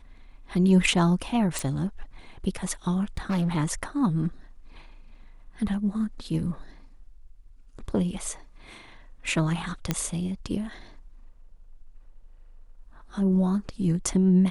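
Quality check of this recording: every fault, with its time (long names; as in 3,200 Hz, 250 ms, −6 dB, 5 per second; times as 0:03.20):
0:01.59: click
0:03.17–0:03.57: clipping −22 dBFS
0:09.91: click −10 dBFS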